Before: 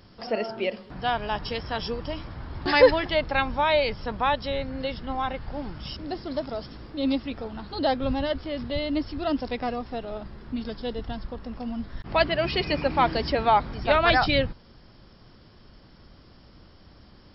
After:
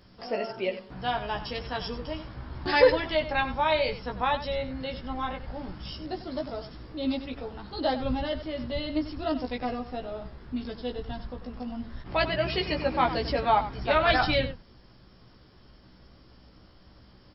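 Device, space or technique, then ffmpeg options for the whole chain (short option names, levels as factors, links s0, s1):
slapback doubling: -filter_complex "[0:a]asplit=3[s0][s1][s2];[s1]adelay=16,volume=0.668[s3];[s2]adelay=96,volume=0.266[s4];[s0][s3][s4]amix=inputs=3:normalize=0,volume=0.596"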